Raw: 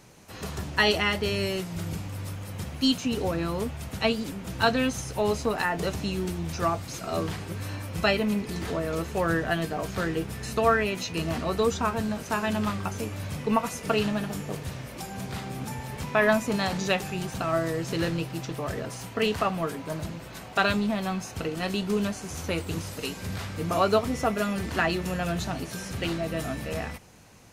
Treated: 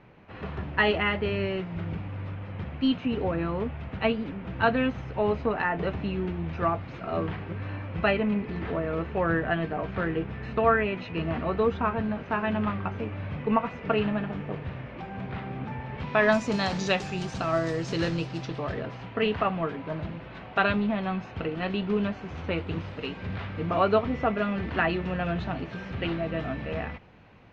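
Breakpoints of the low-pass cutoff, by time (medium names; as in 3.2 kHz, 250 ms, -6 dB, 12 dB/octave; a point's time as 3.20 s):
low-pass 24 dB/octave
15.92 s 2.7 kHz
16.34 s 6.3 kHz
18.18 s 6.3 kHz
18.96 s 3.1 kHz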